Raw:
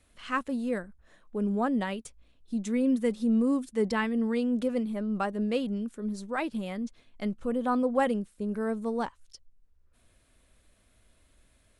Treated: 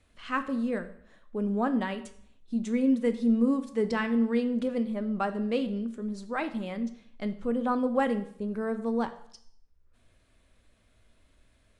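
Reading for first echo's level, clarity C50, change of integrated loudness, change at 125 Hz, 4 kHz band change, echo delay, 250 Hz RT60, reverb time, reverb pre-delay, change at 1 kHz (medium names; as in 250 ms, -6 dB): no echo, 13.5 dB, +0.5 dB, no reading, -1.0 dB, no echo, 0.65 s, 0.60 s, 4 ms, 0.0 dB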